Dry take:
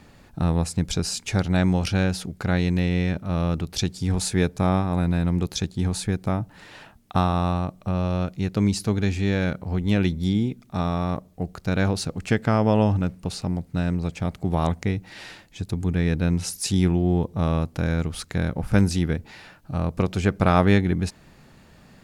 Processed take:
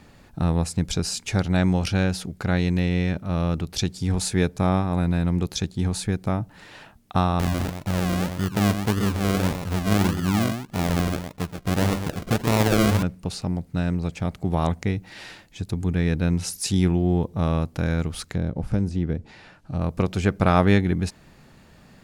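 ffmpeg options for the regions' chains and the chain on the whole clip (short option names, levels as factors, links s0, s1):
-filter_complex "[0:a]asettb=1/sr,asplit=3[s0][s1][s2];[s0]atrim=end=7.394[s3];[s1]atrim=start=7.39:end=13.03,asetpts=PTS-STARTPTS,afade=t=in:d=0.004:c=qsin,afade=t=out:st=5.636:d=0.004:c=qsin,aecho=1:1:127:0.422,atrim=end_sample=248724,deesser=0.8,acrusher=samples=39:mix=1:aa=0.000001:lfo=1:lforange=23.4:lforate=1.7[s4];[s2]atrim=start=13.026[s5];[s3][s4]acrossfade=d=0.004:c1=hsin:c2=qsin[s6];[s6][s5]acrossfade=d=0.004:c1=qsin:c2=hsin,asettb=1/sr,asplit=3[s7][s8][s9];[s7]atrim=end=18.324[s10];[s8]atrim=start=18.32:end=19.81,asetpts=PTS-STARTPTS,afade=t=in:d=0.004:c=qsin,afade=t=out:st=1.486:d=0.004:c=qsin,lowpass=8700,acrossover=split=750|2800[s11][s12][s13];[s11]acompressor=threshold=0.112:ratio=4[s14];[s12]acompressor=threshold=0.00398:ratio=4[s15];[s13]acompressor=threshold=0.002:ratio=4[s16];[s14][s15][s16]amix=inputs=3:normalize=0[s17];[s9]atrim=start=19.806[s18];[s10][s17]acrossfade=d=0.004:c1=hsin:c2=qsin[s19];[s19][s18]acrossfade=d=0.004:c1=qsin:c2=hsin"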